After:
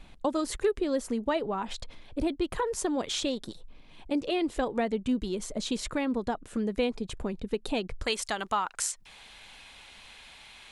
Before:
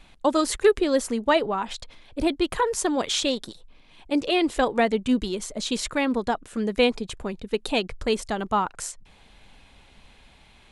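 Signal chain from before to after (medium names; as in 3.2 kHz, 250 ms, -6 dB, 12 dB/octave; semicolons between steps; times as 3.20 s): tilt shelf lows +3 dB, about 640 Hz, from 8.02 s lows -8 dB; compression 2:1, threshold -31 dBFS, peak gain reduction 10.5 dB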